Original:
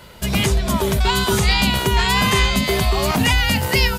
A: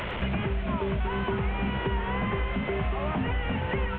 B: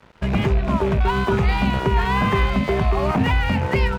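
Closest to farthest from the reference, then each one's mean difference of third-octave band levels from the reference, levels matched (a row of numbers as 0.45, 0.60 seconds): B, A; 7.0, 13.0 decibels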